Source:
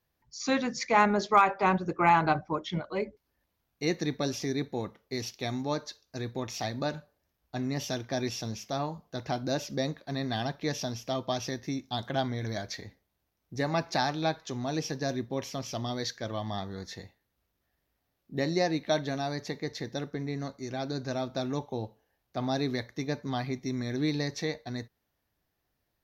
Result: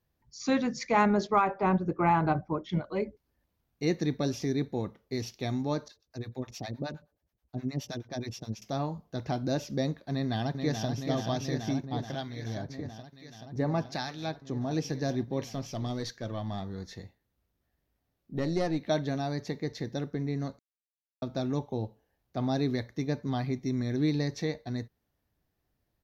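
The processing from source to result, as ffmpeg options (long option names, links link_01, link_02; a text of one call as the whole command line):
ffmpeg -i in.wav -filter_complex "[0:a]asettb=1/sr,asplit=3[link_01][link_02][link_03];[link_01]atrim=end=1.274[link_04];[link_02]atrim=start=1.27:end=2.69,asetpts=PTS-STARTPTS,afade=type=in:duration=0.004:curve=qsin,afade=type=out:start_time=1.416:duration=0.004:curve=qsin,highshelf=frequency=2700:gain=-10[link_05];[link_03]atrim=start=2.686[link_06];[link_04][link_05]acrossfade=duration=0.004:curve1=hsin:curve2=qsin[link_07];[link_07][link_06]acrossfade=duration=0.004:curve1=qsin:curve2=hsin,asettb=1/sr,asplit=3[link_08][link_09][link_10];[link_08]atrim=end=5.884[link_11];[link_09]atrim=start=5.88:end=8.62,asetpts=PTS-STARTPTS,afade=type=in:duration=0.004:curve=qsin,afade=type=out:start_time=2.736:duration=0.004:curve=qsin,acrossover=split=630[link_12][link_13];[link_12]aeval=exprs='val(0)*(1-1/2+1/2*cos(2*PI*9.5*n/s))':channel_layout=same[link_14];[link_13]aeval=exprs='val(0)*(1-1/2-1/2*cos(2*PI*9.5*n/s))':channel_layout=same[link_15];[link_14][link_15]amix=inputs=2:normalize=0[link_16];[link_10]atrim=start=8.616[link_17];[link_11][link_16]acrossfade=duration=0.004:curve1=hsin:curve2=qsin[link_18];[link_18][link_17]acrossfade=duration=0.004:curve1=qsin:curve2=hsin,asplit=2[link_19][link_20];[link_20]afade=type=in:start_time=10.11:duration=0.01,afade=type=out:start_time=10.87:duration=0.01,aecho=0:1:430|860|1290|1720|2150|2580|3010|3440|3870|4300|4730|5160:0.530884|0.451252|0.383564|0.326029|0.277125|0.235556|0.200223|0.170189|0.144661|0.122962|0.104518|0.0888399[link_21];[link_19][link_21]amix=inputs=2:normalize=0,asettb=1/sr,asplit=3[link_22][link_23][link_24];[link_22]atrim=end=11.854[link_25];[link_23]atrim=start=11.85:end=14.71,asetpts=PTS-STARTPTS,afade=type=in:duration=0.004:curve=qsin,afade=type=out:start_time=2.856:duration=0.004:curve=qsin,acrossover=split=1500[link_26][link_27];[link_26]aeval=exprs='val(0)*(1-0.7/2+0.7/2*cos(2*PI*1.1*n/s))':channel_layout=same[link_28];[link_27]aeval=exprs='val(0)*(1-0.7/2-0.7/2*cos(2*PI*1.1*n/s))':channel_layout=same[link_29];[link_28][link_29]amix=inputs=2:normalize=0[link_30];[link_24]atrim=start=14.706[link_31];[link_25][link_30]acrossfade=duration=0.004:curve1=hsin:curve2=qsin[link_32];[link_32][link_31]acrossfade=duration=0.004:curve1=qsin:curve2=hsin,asettb=1/sr,asplit=3[link_33][link_34][link_35];[link_33]atrim=end=15.494[link_36];[link_34]atrim=start=15.49:end=18.83,asetpts=PTS-STARTPTS,afade=type=in:duration=0.004:curve=qsin,afade=type=out:start_time=3.336:duration=0.004:curve=qsin,aeval=exprs='(tanh(11.2*val(0)+0.35)-tanh(0.35))/11.2':channel_layout=same[link_37];[link_35]atrim=start=18.826[link_38];[link_36][link_37]acrossfade=duration=0.004:curve1=hsin:curve2=qsin[link_39];[link_39][link_38]acrossfade=duration=0.004:curve1=qsin:curve2=hsin,asplit=3[link_40][link_41][link_42];[link_40]atrim=end=20.59,asetpts=PTS-STARTPTS,afade=type=out:start_time=20.586:duration=0.004:curve=hsin[link_43];[link_41]atrim=start=20.59:end=21.22,asetpts=PTS-STARTPTS,volume=0[link_44];[link_42]atrim=start=21.22,asetpts=PTS-STARTPTS,afade=type=in:duration=0.004:curve=hsin[link_45];[link_43][link_44][link_45]concat=n=3:v=0:a=1,lowshelf=frequency=480:gain=8,volume=-4dB" out.wav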